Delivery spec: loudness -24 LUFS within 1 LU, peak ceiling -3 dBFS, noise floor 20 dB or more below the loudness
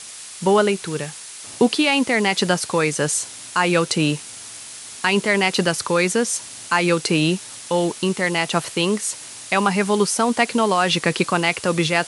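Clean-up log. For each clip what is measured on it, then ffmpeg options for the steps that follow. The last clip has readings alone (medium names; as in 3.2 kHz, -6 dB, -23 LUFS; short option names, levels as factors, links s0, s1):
noise floor -37 dBFS; noise floor target -40 dBFS; loudness -20.0 LUFS; peak level -3.5 dBFS; loudness target -24.0 LUFS
-> -af "afftdn=nr=6:nf=-37"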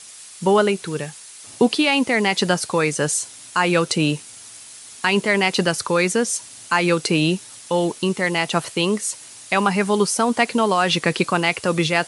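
noise floor -41 dBFS; loudness -20.0 LUFS; peak level -3.5 dBFS; loudness target -24.0 LUFS
-> -af "volume=0.631"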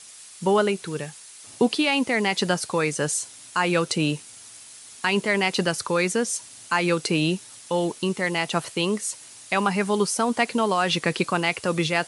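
loudness -24.0 LUFS; peak level -7.5 dBFS; noise floor -45 dBFS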